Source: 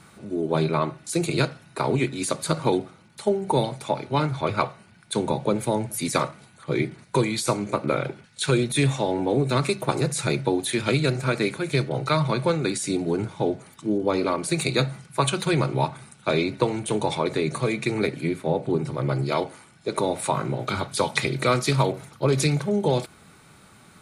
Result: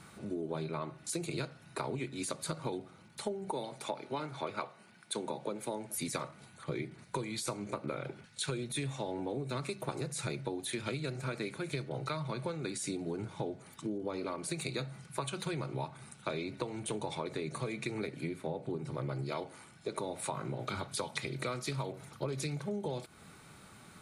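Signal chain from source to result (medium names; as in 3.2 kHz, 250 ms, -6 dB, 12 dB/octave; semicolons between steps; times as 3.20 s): 3.51–5.98 s: high-pass 220 Hz 12 dB/octave; compression 6:1, threshold -31 dBFS, peak gain reduction 14.5 dB; trim -3.5 dB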